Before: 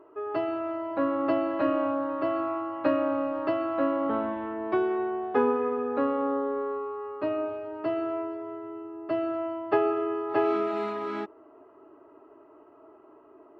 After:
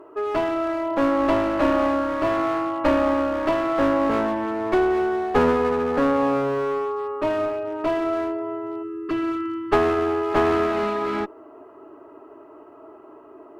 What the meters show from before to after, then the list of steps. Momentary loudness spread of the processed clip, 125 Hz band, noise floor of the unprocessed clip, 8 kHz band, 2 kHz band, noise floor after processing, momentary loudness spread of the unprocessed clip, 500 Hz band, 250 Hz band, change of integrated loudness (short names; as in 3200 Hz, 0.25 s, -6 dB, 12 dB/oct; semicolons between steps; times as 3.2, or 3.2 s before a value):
7 LU, +14.0 dB, -55 dBFS, n/a, +9.5 dB, -46 dBFS, 8 LU, +6.0 dB, +6.0 dB, +6.0 dB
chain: spectral delete 8.83–9.72, 490–1000 Hz; one-sided clip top -31.5 dBFS; gain +8.5 dB